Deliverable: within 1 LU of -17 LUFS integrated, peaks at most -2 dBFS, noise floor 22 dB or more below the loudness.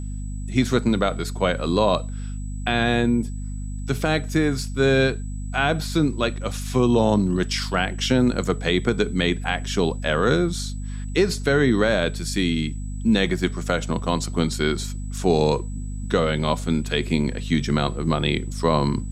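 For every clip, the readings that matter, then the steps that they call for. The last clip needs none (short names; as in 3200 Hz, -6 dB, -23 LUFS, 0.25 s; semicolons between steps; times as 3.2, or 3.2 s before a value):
hum 50 Hz; harmonics up to 250 Hz; hum level -27 dBFS; steady tone 7900 Hz; tone level -47 dBFS; loudness -22.5 LUFS; peak -6.0 dBFS; loudness target -17.0 LUFS
-> de-hum 50 Hz, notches 5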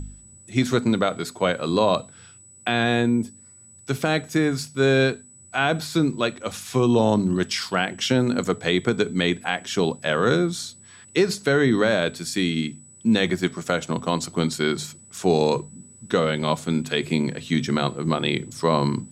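hum none; steady tone 7900 Hz; tone level -47 dBFS
-> notch 7900 Hz, Q 30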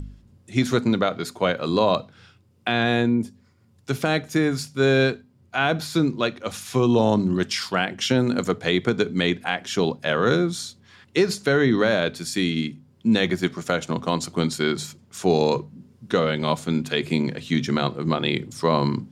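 steady tone none; loudness -23.0 LUFS; peak -7.0 dBFS; loudness target -17.0 LUFS
-> gain +6 dB; limiter -2 dBFS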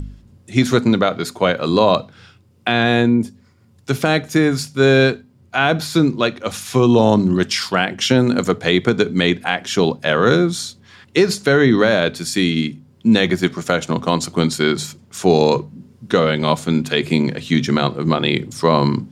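loudness -17.0 LUFS; peak -2.0 dBFS; noise floor -51 dBFS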